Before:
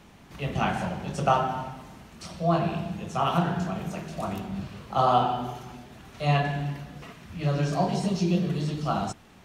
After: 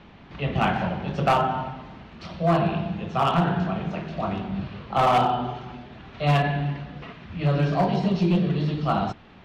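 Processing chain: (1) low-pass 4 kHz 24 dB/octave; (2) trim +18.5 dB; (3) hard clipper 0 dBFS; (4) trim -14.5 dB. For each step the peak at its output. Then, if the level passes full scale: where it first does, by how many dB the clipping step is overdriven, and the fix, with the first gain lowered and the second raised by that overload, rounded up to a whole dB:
-9.5 dBFS, +9.0 dBFS, 0.0 dBFS, -14.5 dBFS; step 2, 9.0 dB; step 2 +9.5 dB, step 4 -5.5 dB

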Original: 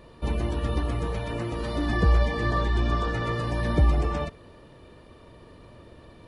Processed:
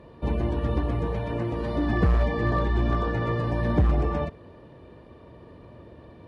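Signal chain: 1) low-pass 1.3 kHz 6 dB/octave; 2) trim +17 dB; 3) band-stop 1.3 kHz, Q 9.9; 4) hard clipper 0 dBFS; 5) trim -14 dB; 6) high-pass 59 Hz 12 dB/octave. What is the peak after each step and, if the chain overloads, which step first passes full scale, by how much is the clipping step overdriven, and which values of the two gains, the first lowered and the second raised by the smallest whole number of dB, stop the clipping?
-11.0 dBFS, +6.0 dBFS, +6.0 dBFS, 0.0 dBFS, -14.0 dBFS, -9.0 dBFS; step 2, 6.0 dB; step 2 +11 dB, step 5 -8 dB

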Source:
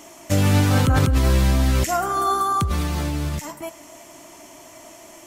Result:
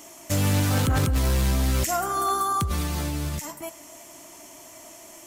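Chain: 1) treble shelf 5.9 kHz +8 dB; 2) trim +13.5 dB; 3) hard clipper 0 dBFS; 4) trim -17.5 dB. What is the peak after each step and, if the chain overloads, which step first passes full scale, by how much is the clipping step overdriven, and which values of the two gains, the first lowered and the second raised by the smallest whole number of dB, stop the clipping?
-6.0 dBFS, +7.5 dBFS, 0.0 dBFS, -17.5 dBFS; step 2, 7.5 dB; step 2 +5.5 dB, step 4 -9.5 dB

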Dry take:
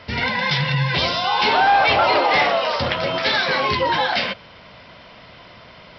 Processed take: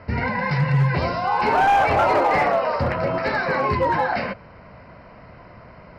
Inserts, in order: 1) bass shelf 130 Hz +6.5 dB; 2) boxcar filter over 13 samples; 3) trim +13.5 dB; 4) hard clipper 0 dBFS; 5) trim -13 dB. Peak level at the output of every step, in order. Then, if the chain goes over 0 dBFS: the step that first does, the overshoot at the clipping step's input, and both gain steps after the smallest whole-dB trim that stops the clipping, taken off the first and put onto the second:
-8.5 dBFS, -9.5 dBFS, +4.0 dBFS, 0.0 dBFS, -13.0 dBFS; step 3, 4.0 dB; step 3 +9.5 dB, step 5 -9 dB

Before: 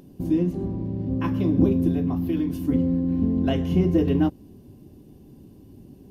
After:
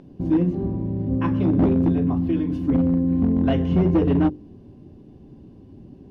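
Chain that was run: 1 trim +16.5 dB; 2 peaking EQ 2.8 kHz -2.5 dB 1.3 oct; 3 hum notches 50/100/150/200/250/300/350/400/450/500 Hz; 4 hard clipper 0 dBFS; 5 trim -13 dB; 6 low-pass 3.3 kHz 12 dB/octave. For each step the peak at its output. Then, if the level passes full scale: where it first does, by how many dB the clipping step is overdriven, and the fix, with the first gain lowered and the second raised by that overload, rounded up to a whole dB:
+9.0 dBFS, +9.0 dBFS, +8.5 dBFS, 0.0 dBFS, -13.0 dBFS, -13.0 dBFS; step 1, 8.5 dB; step 1 +7.5 dB, step 5 -4 dB

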